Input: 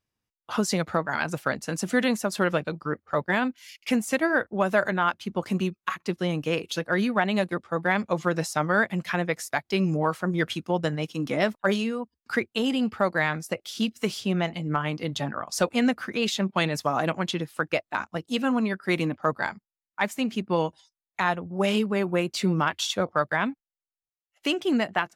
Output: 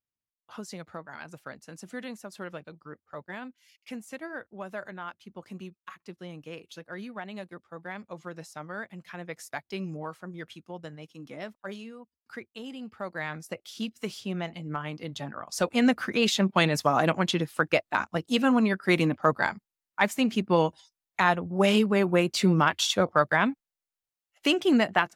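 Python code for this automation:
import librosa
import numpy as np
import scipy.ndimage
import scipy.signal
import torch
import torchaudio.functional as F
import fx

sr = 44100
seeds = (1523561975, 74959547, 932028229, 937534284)

y = fx.gain(x, sr, db=fx.line((9.12, -15.0), (9.47, -8.0), (10.41, -15.0), (12.84, -15.0), (13.4, -7.0), (15.35, -7.0), (15.94, 2.0)))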